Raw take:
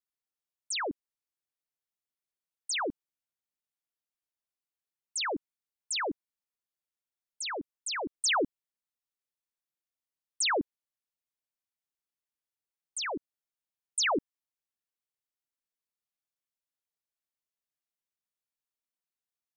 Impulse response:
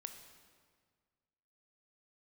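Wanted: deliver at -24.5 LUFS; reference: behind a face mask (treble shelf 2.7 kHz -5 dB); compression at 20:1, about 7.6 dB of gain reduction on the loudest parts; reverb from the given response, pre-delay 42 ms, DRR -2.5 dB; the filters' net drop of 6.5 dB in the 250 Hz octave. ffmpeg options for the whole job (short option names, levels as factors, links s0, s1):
-filter_complex "[0:a]equalizer=f=250:t=o:g=-9,acompressor=threshold=0.0224:ratio=20,asplit=2[s0][s1];[1:a]atrim=start_sample=2205,adelay=42[s2];[s1][s2]afir=irnorm=-1:irlink=0,volume=2.11[s3];[s0][s3]amix=inputs=2:normalize=0,highshelf=f=2700:g=-5,volume=3.98"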